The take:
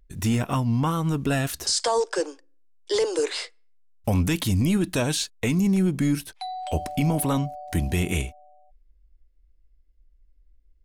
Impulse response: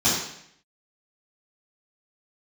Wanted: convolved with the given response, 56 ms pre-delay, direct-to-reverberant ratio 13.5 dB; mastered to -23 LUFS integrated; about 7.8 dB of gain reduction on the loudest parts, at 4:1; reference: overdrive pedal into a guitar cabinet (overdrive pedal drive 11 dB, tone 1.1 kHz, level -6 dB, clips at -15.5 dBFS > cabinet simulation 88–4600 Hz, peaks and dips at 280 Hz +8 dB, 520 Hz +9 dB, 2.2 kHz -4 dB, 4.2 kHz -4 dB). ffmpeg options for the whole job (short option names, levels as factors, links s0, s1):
-filter_complex "[0:a]acompressor=threshold=0.0398:ratio=4,asplit=2[s0][s1];[1:a]atrim=start_sample=2205,adelay=56[s2];[s1][s2]afir=irnorm=-1:irlink=0,volume=0.0335[s3];[s0][s3]amix=inputs=2:normalize=0,asplit=2[s4][s5];[s5]highpass=f=720:p=1,volume=3.55,asoftclip=type=tanh:threshold=0.168[s6];[s4][s6]amix=inputs=2:normalize=0,lowpass=f=1100:p=1,volume=0.501,highpass=88,equalizer=f=280:t=q:w=4:g=8,equalizer=f=520:t=q:w=4:g=9,equalizer=f=2200:t=q:w=4:g=-4,equalizer=f=4200:t=q:w=4:g=-4,lowpass=f=4600:w=0.5412,lowpass=f=4600:w=1.3066,volume=2.11"